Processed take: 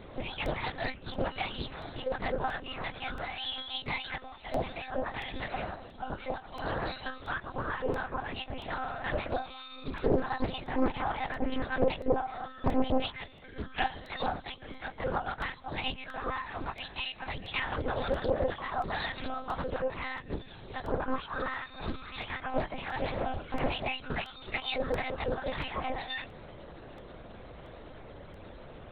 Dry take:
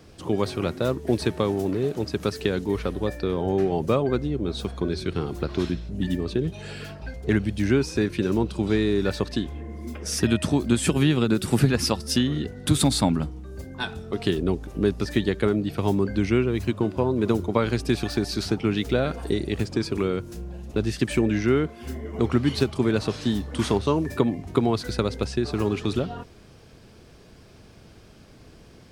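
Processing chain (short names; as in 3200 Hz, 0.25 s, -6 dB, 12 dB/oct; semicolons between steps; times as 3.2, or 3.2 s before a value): spectrum mirrored in octaves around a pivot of 1600 Hz; notches 50/100/150/200/250 Hz; compressor 2.5:1, threshold -37 dBFS, peak gain reduction 14 dB; monotone LPC vocoder at 8 kHz 260 Hz; crackling interface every 0.68 s, samples 64, repeat, from 0.46; Doppler distortion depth 0.71 ms; gain +9 dB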